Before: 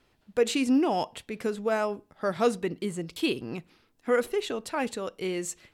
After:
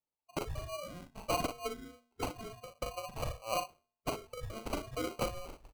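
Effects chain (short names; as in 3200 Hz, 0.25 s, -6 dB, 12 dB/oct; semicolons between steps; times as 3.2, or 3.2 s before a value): four-band scrambler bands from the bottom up 4321; in parallel at -1.5 dB: limiter -19 dBFS, peak gain reduction 8 dB; on the sum: spectral noise reduction 13 dB; treble ducked by the level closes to 740 Hz, closed at -21.5 dBFS; expander -50 dBFS; bell 6000 Hz +6 dB 0.97 oct; wavefolder -29 dBFS; low shelf 440 Hz +4.5 dB; on a send: early reflections 40 ms -6.5 dB, 59 ms -12 dB; on the sum: FFT band-reject 150–3300 Hz; de-hum 229.6 Hz, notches 23; sample-and-hold 25×; gain +3.5 dB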